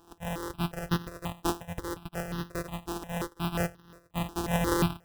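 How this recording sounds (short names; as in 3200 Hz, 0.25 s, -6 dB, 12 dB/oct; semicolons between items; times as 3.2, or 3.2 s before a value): a buzz of ramps at a fixed pitch in blocks of 256 samples; random-step tremolo 4.2 Hz; aliases and images of a low sample rate 2200 Hz, jitter 0%; notches that jump at a steady rate 5.6 Hz 560–2300 Hz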